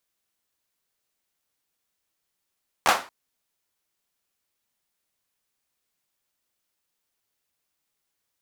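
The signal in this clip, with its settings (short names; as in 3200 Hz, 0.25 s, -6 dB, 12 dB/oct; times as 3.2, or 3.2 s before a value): hand clap length 0.23 s, bursts 3, apart 13 ms, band 920 Hz, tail 0.32 s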